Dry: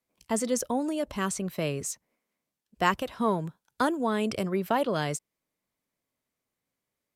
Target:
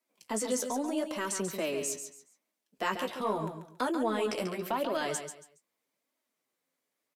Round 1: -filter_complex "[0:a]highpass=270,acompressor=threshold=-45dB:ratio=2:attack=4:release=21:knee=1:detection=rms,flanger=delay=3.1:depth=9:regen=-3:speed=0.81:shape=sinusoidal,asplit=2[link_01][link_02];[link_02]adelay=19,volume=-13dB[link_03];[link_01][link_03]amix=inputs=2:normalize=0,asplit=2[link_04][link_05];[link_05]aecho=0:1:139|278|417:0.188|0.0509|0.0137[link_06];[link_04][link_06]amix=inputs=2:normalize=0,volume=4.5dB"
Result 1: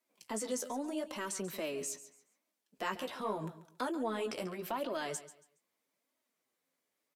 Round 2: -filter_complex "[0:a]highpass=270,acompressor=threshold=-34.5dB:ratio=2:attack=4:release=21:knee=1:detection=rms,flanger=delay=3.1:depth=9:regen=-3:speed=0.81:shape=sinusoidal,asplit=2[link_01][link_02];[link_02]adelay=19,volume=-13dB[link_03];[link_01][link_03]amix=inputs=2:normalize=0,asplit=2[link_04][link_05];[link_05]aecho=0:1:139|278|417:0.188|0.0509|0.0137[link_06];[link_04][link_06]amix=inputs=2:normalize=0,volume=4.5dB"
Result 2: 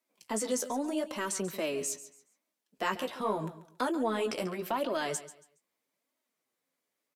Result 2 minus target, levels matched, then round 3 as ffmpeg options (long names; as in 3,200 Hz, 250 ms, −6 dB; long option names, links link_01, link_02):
echo-to-direct −6.5 dB
-filter_complex "[0:a]highpass=270,acompressor=threshold=-34.5dB:ratio=2:attack=4:release=21:knee=1:detection=rms,flanger=delay=3.1:depth=9:regen=-3:speed=0.81:shape=sinusoidal,asplit=2[link_01][link_02];[link_02]adelay=19,volume=-13dB[link_03];[link_01][link_03]amix=inputs=2:normalize=0,asplit=2[link_04][link_05];[link_05]aecho=0:1:139|278|417:0.398|0.107|0.029[link_06];[link_04][link_06]amix=inputs=2:normalize=0,volume=4.5dB"